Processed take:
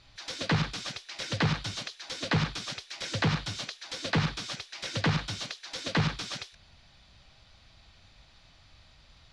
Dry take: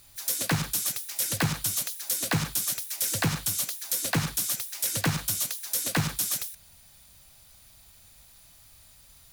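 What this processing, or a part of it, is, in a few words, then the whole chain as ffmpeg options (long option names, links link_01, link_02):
synthesiser wavefolder: -af "aeval=exprs='0.0891*(abs(mod(val(0)/0.0891+3,4)-2)-1)':channel_layout=same,lowpass=frequency=4600:width=0.5412,lowpass=frequency=4600:width=1.3066,volume=2.5dB"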